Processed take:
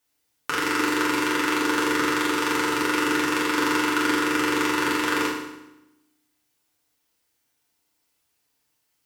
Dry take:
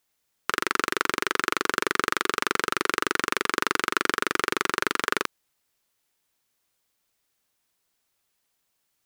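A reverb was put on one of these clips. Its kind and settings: FDN reverb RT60 0.92 s, low-frequency decay 1.3×, high-frequency decay 0.9×, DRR -6 dB; trim -4.5 dB

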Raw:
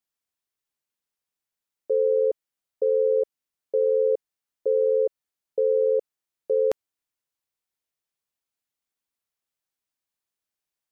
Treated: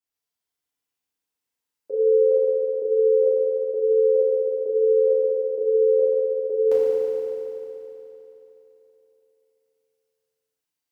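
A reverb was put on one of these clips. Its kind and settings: FDN reverb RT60 3.3 s, high-frequency decay 1×, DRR -10 dB; trim -8 dB

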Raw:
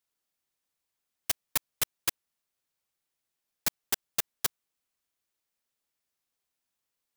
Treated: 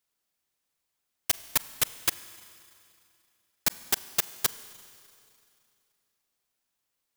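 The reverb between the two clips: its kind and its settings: Schroeder reverb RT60 2.6 s, combs from 33 ms, DRR 15 dB; trim +3 dB

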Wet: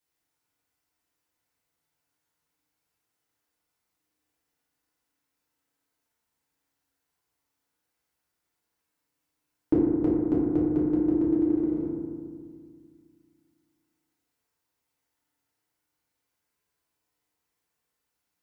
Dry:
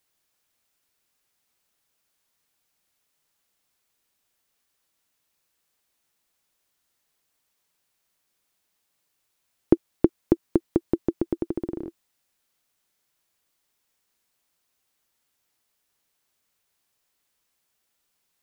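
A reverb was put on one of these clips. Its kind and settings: FDN reverb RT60 1.9 s, low-frequency decay 1.35×, high-frequency decay 0.25×, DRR -8.5 dB; trim -12.5 dB

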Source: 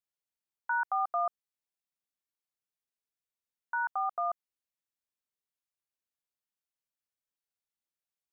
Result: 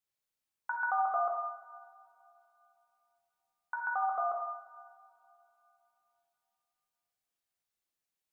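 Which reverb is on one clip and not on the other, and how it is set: two-slope reverb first 0.92 s, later 3.2 s, from -20 dB, DRR -1 dB

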